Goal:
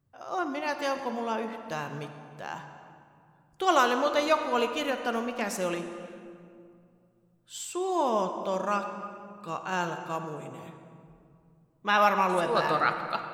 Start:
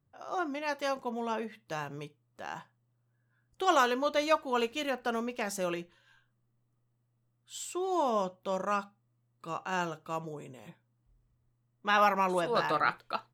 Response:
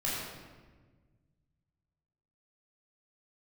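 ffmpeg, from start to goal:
-filter_complex "[0:a]asplit=2[s0][s1];[1:a]atrim=start_sample=2205,asetrate=22932,aresample=44100,adelay=50[s2];[s1][s2]afir=irnorm=-1:irlink=0,volume=0.112[s3];[s0][s3]amix=inputs=2:normalize=0,volume=1.33"

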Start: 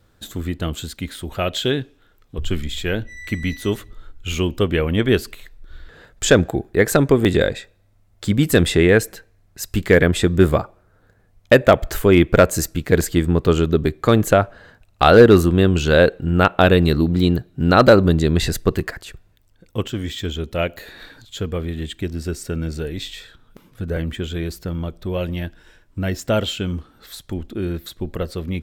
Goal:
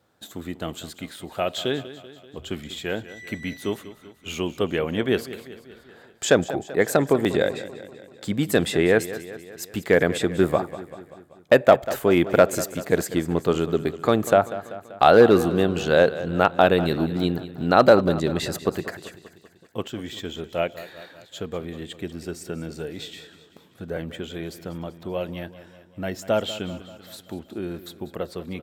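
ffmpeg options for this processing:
-filter_complex "[0:a]highpass=150,equalizer=f=750:t=o:w=0.89:g=6.5,asplit=2[s0][s1];[s1]aecho=0:1:193|386|579|772|965|1158:0.178|0.101|0.0578|0.0329|0.0188|0.0107[s2];[s0][s2]amix=inputs=2:normalize=0,volume=0.501"

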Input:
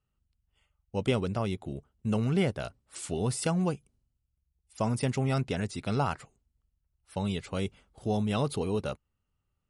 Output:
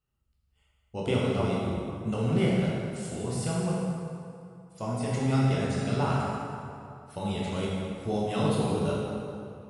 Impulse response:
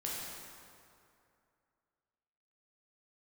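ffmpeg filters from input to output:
-filter_complex "[0:a]asplit=3[s0][s1][s2];[s0]afade=t=out:st=2.58:d=0.02[s3];[s1]flanger=delay=4.2:depth=5.8:regen=-49:speed=1.7:shape=sinusoidal,afade=t=in:st=2.58:d=0.02,afade=t=out:st=5.09:d=0.02[s4];[s2]afade=t=in:st=5.09:d=0.02[s5];[s3][s4][s5]amix=inputs=3:normalize=0[s6];[1:a]atrim=start_sample=2205,asetrate=42777,aresample=44100[s7];[s6][s7]afir=irnorm=-1:irlink=0"

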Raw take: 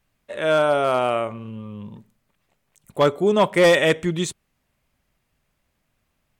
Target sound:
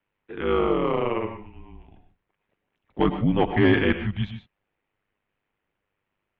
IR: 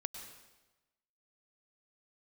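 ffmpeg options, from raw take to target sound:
-filter_complex "[0:a]highpass=f=310:t=q:w=0.5412,highpass=f=310:t=q:w=1.307,lowpass=f=3400:t=q:w=0.5176,lowpass=f=3400:t=q:w=0.7071,lowpass=f=3400:t=q:w=1.932,afreqshift=-190,aeval=exprs='val(0)*sin(2*PI*50*n/s)':c=same,lowshelf=f=160:g=8[s0];[1:a]atrim=start_sample=2205,afade=t=out:st=0.2:d=0.01,atrim=end_sample=9261[s1];[s0][s1]afir=irnorm=-1:irlink=0"

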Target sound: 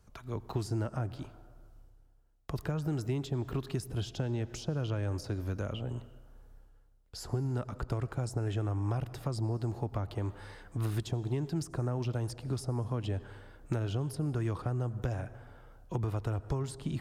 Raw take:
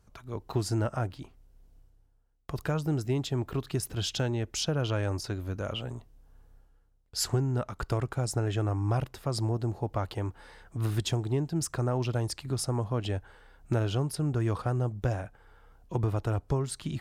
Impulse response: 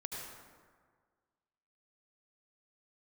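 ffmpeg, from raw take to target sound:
-filter_complex "[0:a]asplit=2[s0][s1];[1:a]atrim=start_sample=2205[s2];[s1][s2]afir=irnorm=-1:irlink=0,volume=0.158[s3];[s0][s3]amix=inputs=2:normalize=0,acrossover=split=350|960[s4][s5][s6];[s4]acompressor=threshold=0.0282:ratio=4[s7];[s5]acompressor=threshold=0.00794:ratio=4[s8];[s6]acompressor=threshold=0.00447:ratio=4[s9];[s7][s8][s9]amix=inputs=3:normalize=0"

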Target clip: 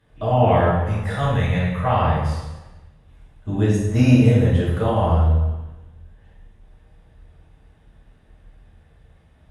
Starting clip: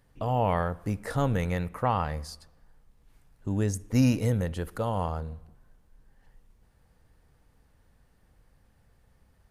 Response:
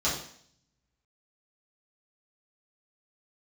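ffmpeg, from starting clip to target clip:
-filter_complex "[0:a]asettb=1/sr,asplit=3[s0][s1][s2];[s0]atrim=end=0.734[s3];[s1]atrim=start=0.73:end=1.94,asetpts=PTS-STARTPTS,afade=t=in:d=0.004:c=qsin,afade=t=out:st=1.206:d=0.004:c=qsin,equalizer=f=320:w=1.5:g=-13[s4];[s2]atrim=start=1.936[s5];[s3][s4]acrossfade=d=0.004:c1=hsin:c2=qsin[s6];[s6][s5]acrossfade=d=0.004:c1=qsin:c2=hsin[s7];[1:a]atrim=start_sample=2205,asetrate=23373,aresample=44100[s8];[s7][s8]afir=irnorm=-1:irlink=0,volume=0.473"

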